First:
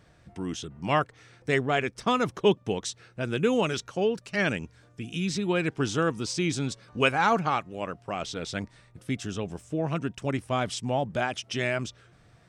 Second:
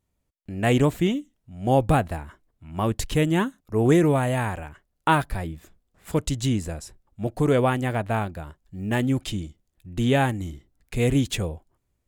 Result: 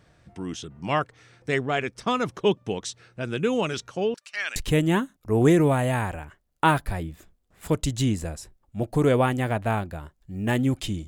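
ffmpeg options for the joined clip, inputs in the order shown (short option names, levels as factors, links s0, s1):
-filter_complex "[0:a]asettb=1/sr,asplit=3[s0][s1][s2];[s0]atrim=end=4.144[s3];[s1]atrim=start=4.14:end=4.56,asetpts=PTS-STARTPTS,afade=t=in:d=0.004:c=qsin,afade=t=out:st=0.416:d=0.004:c=qsin,highpass=1400[s4];[s2]atrim=start=4.556[s5];[s3][s4]acrossfade=d=0.004:c1=hsin:c2=qsin[s6];[s6][s5]acrossfade=d=0.004:c1=qsin:c2=hsin,apad=whole_dur=11.07,atrim=end=11.07,atrim=end=4.562[s7];[1:a]atrim=start=2.998:end=9.51[s8];[s7][s8]acrossfade=d=0.004:c1=hsin:c2=hsin"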